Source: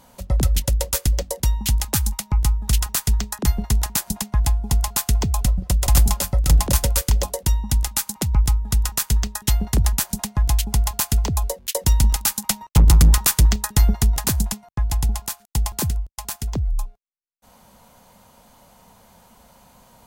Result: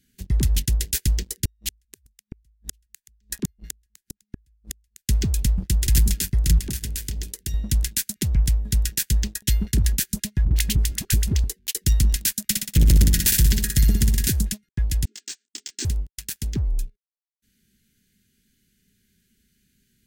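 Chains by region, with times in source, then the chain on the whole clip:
0:01.45–0:05.09: low-shelf EQ 71 Hz +9 dB + gate with flip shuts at −10 dBFS, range −36 dB
0:06.58–0:07.54: mains-hum notches 50/100/150/200 Hz + downward compressor 4 to 1, threshold −24 dBFS
0:10.45–0:11.44: all-pass dispersion highs, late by 113 ms, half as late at 480 Hz + multiband upward and downward compressor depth 100%
0:12.43–0:14.27: parametric band 15,000 Hz +3.5 dB 0.38 octaves + flutter between parallel walls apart 10.4 metres, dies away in 0.82 s
0:15.05–0:15.85: dynamic equaliser 5,100 Hz, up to +5 dB, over −39 dBFS, Q 0.87 + linear-phase brick-wall band-pass 230–8,500 Hz + micro pitch shift up and down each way 35 cents
whole clip: Chebyshev band-stop filter 400–1,600 Hz, order 4; leveller curve on the samples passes 2; level −8 dB

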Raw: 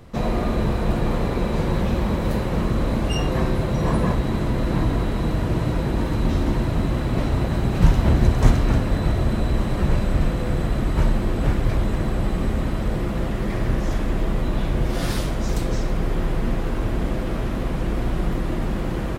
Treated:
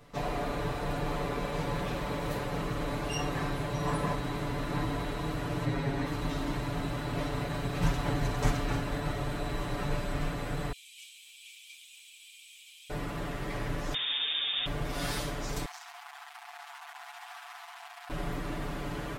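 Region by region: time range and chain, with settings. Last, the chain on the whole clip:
0:05.65–0:06.07: high-shelf EQ 7,000 Hz −10 dB + comb filter 7.4 ms, depth 73%
0:10.72–0:12.90: Chebyshev high-pass with heavy ripple 2,300 Hz, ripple 6 dB + feedback echo at a low word length 266 ms, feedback 35%, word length 8 bits, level −14.5 dB
0:13.94–0:14.66: spectral tilt +2 dB per octave + voice inversion scrambler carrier 3,600 Hz
0:15.65–0:18.10: gain into a clipping stage and back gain 27.5 dB + linear-phase brick-wall high-pass 660 Hz
whole clip: low-shelf EQ 370 Hz −9.5 dB; comb filter 6.9 ms, depth 93%; level −7 dB

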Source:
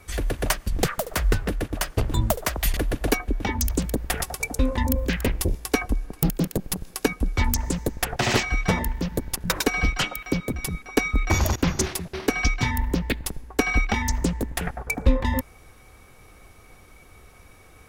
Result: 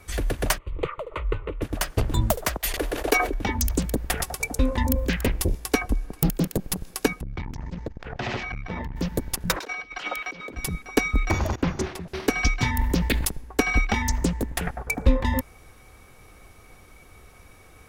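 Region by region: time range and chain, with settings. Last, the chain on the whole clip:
0:00.58–0:01.62: low-pass filter 2,200 Hz + low-shelf EQ 150 Hz −6 dB + phaser with its sweep stopped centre 1,100 Hz, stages 8
0:02.57–0:03.34: noise gate −26 dBFS, range −9 dB + low shelf with overshoot 270 Hz −12 dB, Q 1.5 + level that may fall only so fast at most 53 dB per second
0:07.21–0:08.96: high-frequency loss of the air 200 metres + downward compressor 4 to 1, threshold −25 dBFS + saturating transformer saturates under 260 Hz
0:09.56–0:10.57: compressor whose output falls as the input rises −32 dBFS + three-way crossover with the lows and the highs turned down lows −19 dB, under 290 Hz, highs −16 dB, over 5,800 Hz
0:11.31–0:12.08: low-pass filter 1,700 Hz 6 dB per octave + low-shelf EQ 160 Hz −4.5 dB
0:12.79–0:13.29: high-shelf EQ 3,800 Hz +5.5 dB + level that may fall only so fast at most 47 dB per second
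whole clip: no processing

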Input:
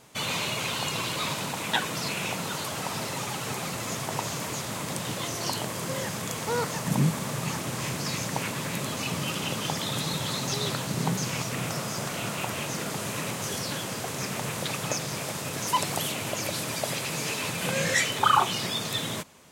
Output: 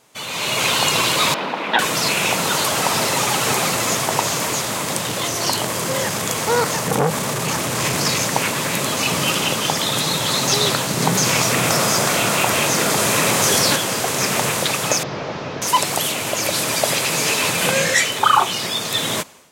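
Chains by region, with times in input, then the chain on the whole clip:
0:01.34–0:01.79: high-pass filter 200 Hz 24 dB per octave + high-frequency loss of the air 330 metres
0:05.01–0:08.21: low-shelf EQ 64 Hz +8.5 dB + saturating transformer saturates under 790 Hz
0:11.02–0:13.76: notch filter 2,900 Hz, Q 28 + envelope flattener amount 50%
0:15.03–0:15.62: linear delta modulator 32 kbit/s, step −48 dBFS + floating-point word with a short mantissa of 8 bits
whole clip: bass and treble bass −7 dB, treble +1 dB; automatic gain control gain up to 16.5 dB; level −1 dB

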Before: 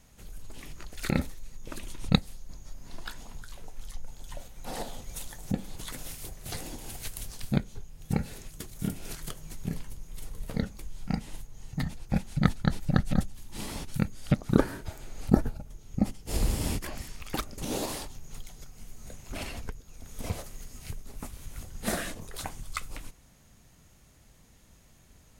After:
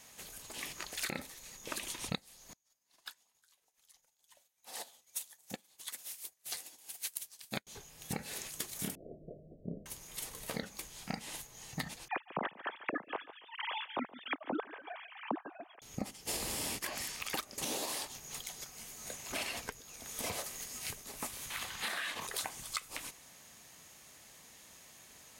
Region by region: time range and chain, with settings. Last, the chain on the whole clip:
0:02.53–0:07.67: spectral tilt +2 dB per octave + expander for the loud parts 2.5 to 1, over −50 dBFS
0:08.95–0:09.86: Butterworth low-pass 660 Hz 96 dB per octave + mains-hum notches 50/100/150/200/250/300/350/400 Hz + double-tracking delay 40 ms −13.5 dB
0:12.08–0:15.82: three sine waves on the formant tracks + repeating echo 143 ms, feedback 21%, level −20.5 dB
0:21.50–0:22.27: flat-topped bell 1,900 Hz +11 dB 2.6 octaves + downward compressor, threshold −35 dBFS
whole clip: high-pass filter 940 Hz 6 dB per octave; notch filter 1,400 Hz, Q 14; downward compressor 16 to 1, threshold −42 dBFS; level +8 dB

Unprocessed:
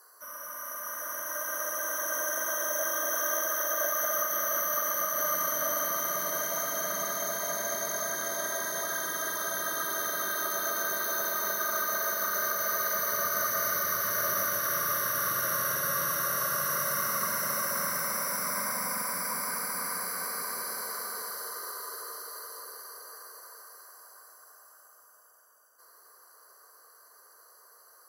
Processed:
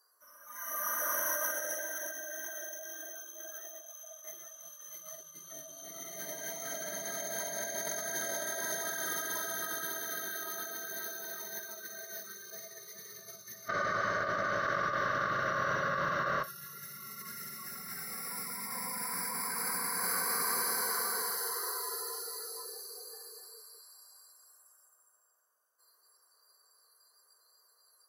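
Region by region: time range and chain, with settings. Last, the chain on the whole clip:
0:13.68–0:16.44: high-frequency loss of the air 250 metres + log-companded quantiser 8 bits
whole clip: compressor whose output falls as the input rises −35 dBFS, ratio −0.5; noise reduction from a noise print of the clip's start 19 dB

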